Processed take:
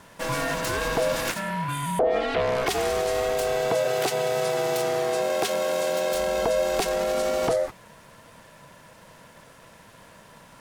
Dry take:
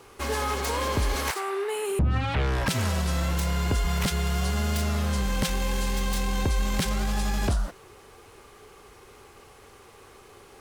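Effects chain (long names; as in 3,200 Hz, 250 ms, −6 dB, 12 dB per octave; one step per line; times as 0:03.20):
ring modulation 570 Hz
0:03.70–0:06.13: high-pass filter 100 Hz 24 dB per octave
level +3.5 dB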